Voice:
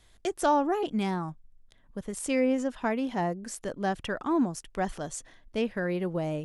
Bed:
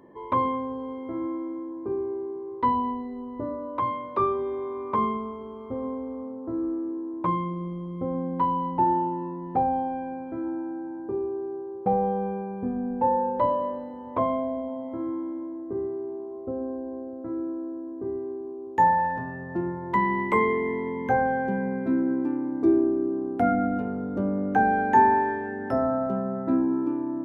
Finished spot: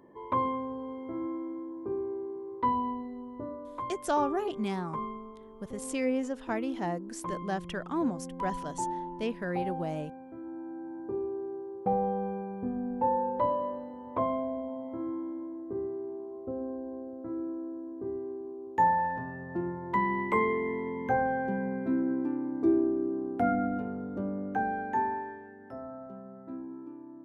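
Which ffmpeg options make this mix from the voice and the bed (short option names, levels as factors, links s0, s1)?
-filter_complex "[0:a]adelay=3650,volume=0.631[s0];[1:a]volume=1.33,afade=t=out:st=3:d=0.95:silence=0.446684,afade=t=in:st=10.45:d=0.55:silence=0.446684,afade=t=out:st=23.53:d=2.04:silence=0.223872[s1];[s0][s1]amix=inputs=2:normalize=0"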